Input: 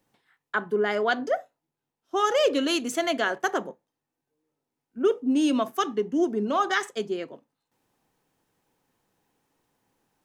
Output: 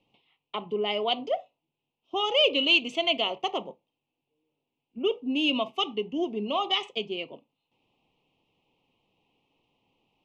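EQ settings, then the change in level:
dynamic equaliser 300 Hz, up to −6 dB, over −37 dBFS, Q 0.76
Butterworth band-reject 1,600 Hz, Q 1.1
low-pass with resonance 2,800 Hz, resonance Q 4.4
0.0 dB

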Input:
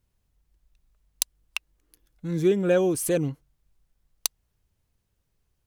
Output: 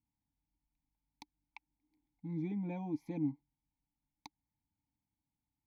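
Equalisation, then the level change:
formant filter u
tilt shelving filter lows +6 dB, about 660 Hz
phaser with its sweep stopped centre 1,900 Hz, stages 8
+4.5 dB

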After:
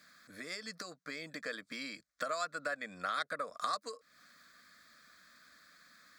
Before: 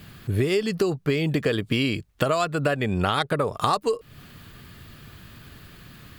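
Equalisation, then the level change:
high-frequency loss of the air 150 metres
first difference
phaser with its sweep stopped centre 580 Hz, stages 8
+7.0 dB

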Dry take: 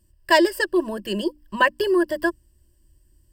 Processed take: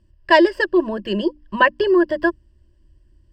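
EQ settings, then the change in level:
high-frequency loss of the air 180 metres
+4.5 dB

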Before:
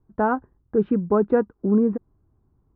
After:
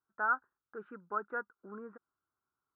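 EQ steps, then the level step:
resonant band-pass 1,400 Hz, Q 7.9
+3.0 dB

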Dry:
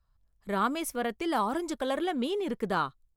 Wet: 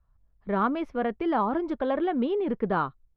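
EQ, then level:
low-pass filter 1,600 Hz 6 dB per octave
high-frequency loss of the air 270 metres
+5.0 dB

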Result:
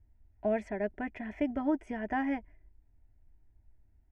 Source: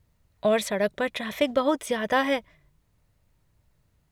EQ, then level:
high-frequency loss of the air 110 metres
spectral tilt −3 dB per octave
phaser with its sweep stopped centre 770 Hz, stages 8
−7.0 dB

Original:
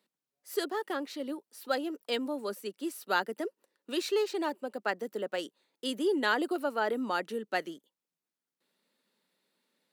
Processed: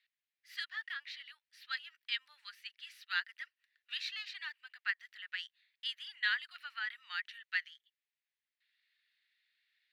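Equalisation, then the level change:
elliptic high-pass filter 1,800 Hz, stop band 80 dB
dynamic equaliser 2,300 Hz, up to −4 dB, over −48 dBFS, Q 1.2
high-frequency loss of the air 330 metres
+9.5 dB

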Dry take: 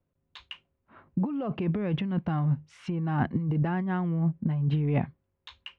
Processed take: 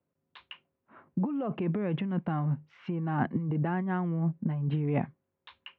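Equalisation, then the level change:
high-pass filter 160 Hz 12 dB per octave
low-pass filter 2,900 Hz 12 dB per octave
high-frequency loss of the air 82 metres
0.0 dB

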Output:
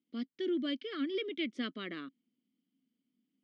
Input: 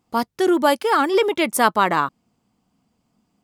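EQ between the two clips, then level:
dynamic equaliser 1,300 Hz, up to +4 dB, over −31 dBFS, Q 6.6
formant filter i
loudspeaker in its box 180–5,500 Hz, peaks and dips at 280 Hz −7 dB, 910 Hz −6 dB, 1,400 Hz −4 dB, 2,300 Hz −9 dB
0.0 dB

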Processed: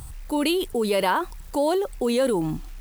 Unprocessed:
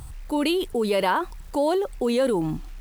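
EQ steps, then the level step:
high-shelf EQ 6,700 Hz +6.5 dB
0.0 dB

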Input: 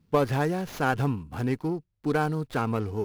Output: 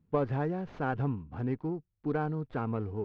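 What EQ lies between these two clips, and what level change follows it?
head-to-tape spacing loss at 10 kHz 37 dB
−4.0 dB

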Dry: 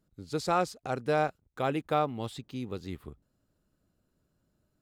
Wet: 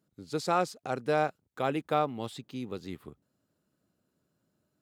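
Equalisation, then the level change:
high-pass filter 130 Hz 12 dB per octave
0.0 dB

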